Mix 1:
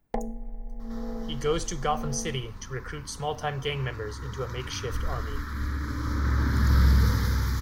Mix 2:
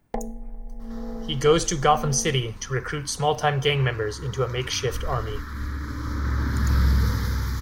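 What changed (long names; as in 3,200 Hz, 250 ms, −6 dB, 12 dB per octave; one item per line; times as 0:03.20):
speech +8.5 dB
first sound: send +8.0 dB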